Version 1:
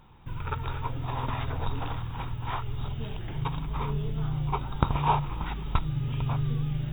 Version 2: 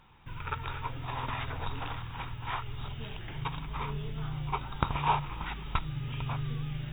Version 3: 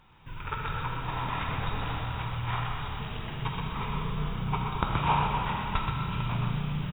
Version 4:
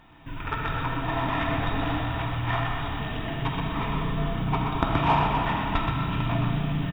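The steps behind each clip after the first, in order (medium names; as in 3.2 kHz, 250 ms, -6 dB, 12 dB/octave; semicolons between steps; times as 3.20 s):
peaking EQ 2.2 kHz +9 dB 2.2 oct; trim -6.5 dB
frequency-shifting echo 125 ms, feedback 43%, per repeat +31 Hz, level -6 dB; algorithmic reverb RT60 3.1 s, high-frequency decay 0.9×, pre-delay 5 ms, DRR 0.5 dB
in parallel at -5 dB: saturation -25 dBFS, distortion -13 dB; on the sum: small resonant body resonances 290/670/1800 Hz, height 15 dB, ringing for 85 ms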